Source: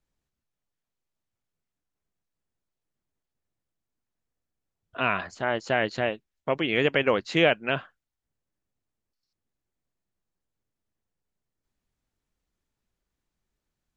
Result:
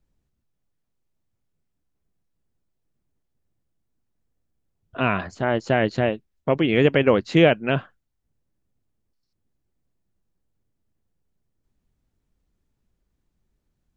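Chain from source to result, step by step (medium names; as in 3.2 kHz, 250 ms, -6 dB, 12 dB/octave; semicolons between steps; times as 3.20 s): bass shelf 490 Hz +11.5 dB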